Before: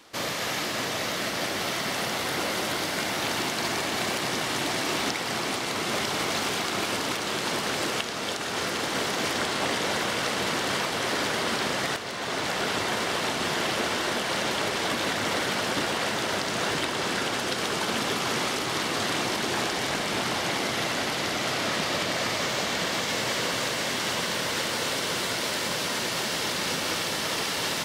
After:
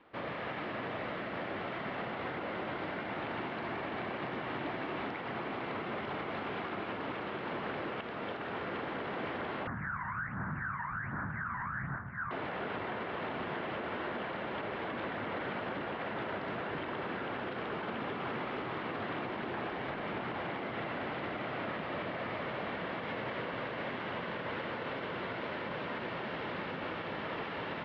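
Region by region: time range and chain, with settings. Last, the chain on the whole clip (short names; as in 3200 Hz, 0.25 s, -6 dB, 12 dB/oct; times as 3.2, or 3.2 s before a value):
9.67–12.31 LPF 2200 Hz + phaser 1.3 Hz, delay 1.1 ms, feedback 73% + EQ curve 160 Hz 0 dB, 460 Hz -24 dB, 940 Hz -5 dB, 1600 Hz +6 dB, 3000 Hz -25 dB
whole clip: Bessel low-pass 1800 Hz, order 6; limiter -23.5 dBFS; gain -5.5 dB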